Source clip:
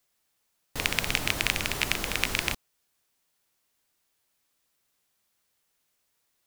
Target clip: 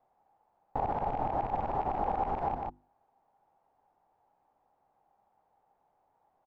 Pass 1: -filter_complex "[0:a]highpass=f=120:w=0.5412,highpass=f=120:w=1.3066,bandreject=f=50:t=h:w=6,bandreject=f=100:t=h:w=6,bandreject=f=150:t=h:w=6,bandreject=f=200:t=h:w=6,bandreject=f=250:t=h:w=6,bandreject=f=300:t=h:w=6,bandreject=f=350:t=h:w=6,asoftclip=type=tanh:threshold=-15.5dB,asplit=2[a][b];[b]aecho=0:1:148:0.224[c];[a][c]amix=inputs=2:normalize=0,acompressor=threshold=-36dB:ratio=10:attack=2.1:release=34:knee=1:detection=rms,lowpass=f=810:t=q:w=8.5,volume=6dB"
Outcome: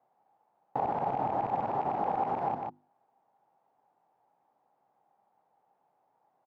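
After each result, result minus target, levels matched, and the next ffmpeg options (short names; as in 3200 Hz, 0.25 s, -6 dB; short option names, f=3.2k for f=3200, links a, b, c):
soft clip: distortion +6 dB; 125 Hz band -3.5 dB
-filter_complex "[0:a]highpass=f=120:w=0.5412,highpass=f=120:w=1.3066,bandreject=f=50:t=h:w=6,bandreject=f=100:t=h:w=6,bandreject=f=150:t=h:w=6,bandreject=f=200:t=h:w=6,bandreject=f=250:t=h:w=6,bandreject=f=300:t=h:w=6,bandreject=f=350:t=h:w=6,asoftclip=type=tanh:threshold=-9dB,asplit=2[a][b];[b]aecho=0:1:148:0.224[c];[a][c]amix=inputs=2:normalize=0,acompressor=threshold=-36dB:ratio=10:attack=2.1:release=34:knee=1:detection=rms,lowpass=f=810:t=q:w=8.5,volume=6dB"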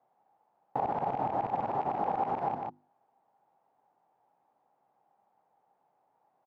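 125 Hz band -3.5 dB
-filter_complex "[0:a]bandreject=f=50:t=h:w=6,bandreject=f=100:t=h:w=6,bandreject=f=150:t=h:w=6,bandreject=f=200:t=h:w=6,bandreject=f=250:t=h:w=6,bandreject=f=300:t=h:w=6,bandreject=f=350:t=h:w=6,asoftclip=type=tanh:threshold=-9dB,asplit=2[a][b];[b]aecho=0:1:148:0.224[c];[a][c]amix=inputs=2:normalize=0,acompressor=threshold=-36dB:ratio=10:attack=2.1:release=34:knee=1:detection=rms,lowpass=f=810:t=q:w=8.5,volume=6dB"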